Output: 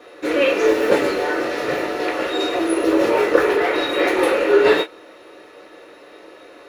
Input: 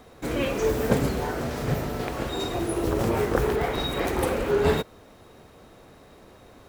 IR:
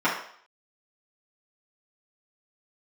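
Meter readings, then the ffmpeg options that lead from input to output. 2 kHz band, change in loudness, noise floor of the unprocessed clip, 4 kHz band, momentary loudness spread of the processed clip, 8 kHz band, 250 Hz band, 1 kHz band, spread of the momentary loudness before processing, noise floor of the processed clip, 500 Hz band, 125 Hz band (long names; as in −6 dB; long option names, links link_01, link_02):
+11.5 dB, +7.5 dB, −51 dBFS, +7.5 dB, 7 LU, +2.0 dB, +6.5 dB, +7.0 dB, 6 LU, −44 dBFS, +9.0 dB, −13.5 dB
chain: -filter_complex "[1:a]atrim=start_sample=2205,afade=type=out:start_time=0.15:duration=0.01,atrim=end_sample=7056,asetrate=83790,aresample=44100[link_01];[0:a][link_01]afir=irnorm=-1:irlink=0,volume=-1dB"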